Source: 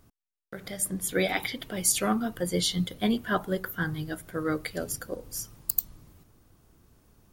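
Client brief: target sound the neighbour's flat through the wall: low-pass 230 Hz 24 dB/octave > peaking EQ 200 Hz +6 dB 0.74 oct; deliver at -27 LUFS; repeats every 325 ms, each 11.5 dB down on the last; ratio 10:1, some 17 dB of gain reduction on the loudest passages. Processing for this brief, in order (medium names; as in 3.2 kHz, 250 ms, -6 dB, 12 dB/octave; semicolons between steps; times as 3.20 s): compression 10:1, threshold -39 dBFS; low-pass 230 Hz 24 dB/octave; peaking EQ 200 Hz +6 dB 0.74 oct; feedback delay 325 ms, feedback 27%, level -11.5 dB; trim +18.5 dB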